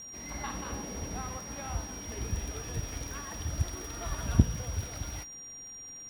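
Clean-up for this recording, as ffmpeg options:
-af "adeclick=t=4,bandreject=f=5700:w=30"

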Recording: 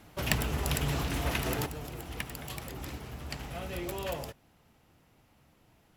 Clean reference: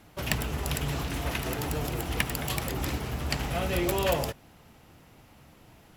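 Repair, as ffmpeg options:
-af "asetnsamples=n=441:p=0,asendcmd='1.66 volume volume 9.5dB',volume=1"

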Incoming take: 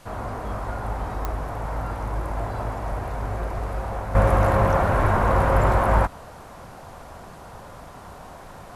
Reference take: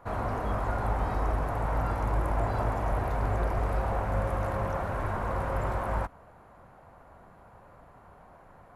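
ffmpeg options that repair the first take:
-af "adeclick=t=4,agate=range=0.0891:threshold=0.02,asetnsamples=n=441:p=0,asendcmd='4.15 volume volume -11.5dB',volume=1"

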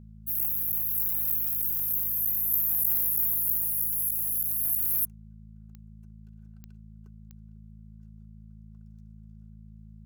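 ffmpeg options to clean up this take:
-af "adeclick=t=4,bandreject=f=53.9:t=h:w=4,bandreject=f=107.8:t=h:w=4,bandreject=f=161.7:t=h:w=4,bandreject=f=215.6:t=h:w=4"

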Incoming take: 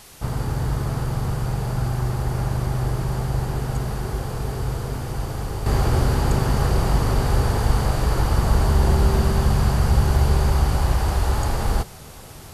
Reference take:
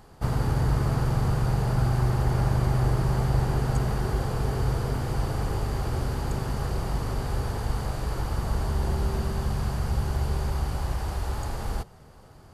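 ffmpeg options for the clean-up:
-af "agate=range=0.0891:threshold=0.1,asetnsamples=n=441:p=0,asendcmd='5.66 volume volume -9dB',volume=1"

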